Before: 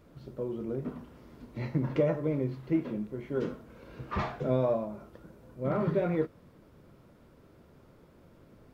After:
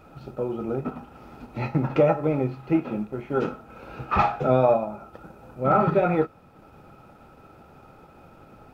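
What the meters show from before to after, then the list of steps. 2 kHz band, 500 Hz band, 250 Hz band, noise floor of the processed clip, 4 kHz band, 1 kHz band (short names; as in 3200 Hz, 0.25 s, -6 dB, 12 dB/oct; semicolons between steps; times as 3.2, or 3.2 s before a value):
+9.5 dB, +7.5 dB, +5.5 dB, -52 dBFS, n/a, +15.0 dB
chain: transient shaper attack 0 dB, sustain -4 dB; small resonant body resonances 810/1300/2500 Hz, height 17 dB, ringing for 35 ms; gain +5.5 dB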